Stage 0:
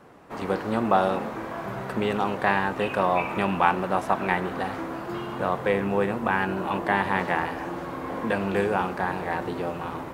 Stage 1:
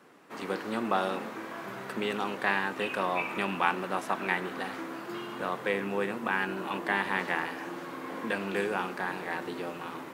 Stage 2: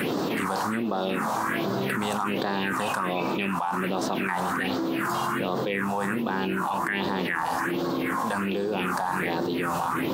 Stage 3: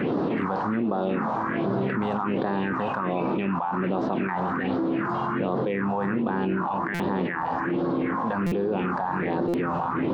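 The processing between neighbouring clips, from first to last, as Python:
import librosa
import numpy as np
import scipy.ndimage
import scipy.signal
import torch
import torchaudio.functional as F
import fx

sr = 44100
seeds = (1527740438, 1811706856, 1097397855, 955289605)

y1 = scipy.signal.sosfilt(scipy.signal.butter(2, 280.0, 'highpass', fs=sr, output='sos'), x)
y1 = fx.peak_eq(y1, sr, hz=690.0, db=-9.0, octaves=1.7)
y2 = fx.phaser_stages(y1, sr, stages=4, low_hz=340.0, high_hz=2200.0, hz=1.3, feedback_pct=40)
y2 = fx.env_flatten(y2, sr, amount_pct=100)
y2 = y2 * 10.0 ** (-3.0 / 20.0)
y3 = fx.spacing_loss(y2, sr, db_at_10k=44)
y3 = fx.buffer_glitch(y3, sr, at_s=(6.94, 8.46, 9.48), block=256, repeats=9)
y3 = y3 * 10.0 ** (4.0 / 20.0)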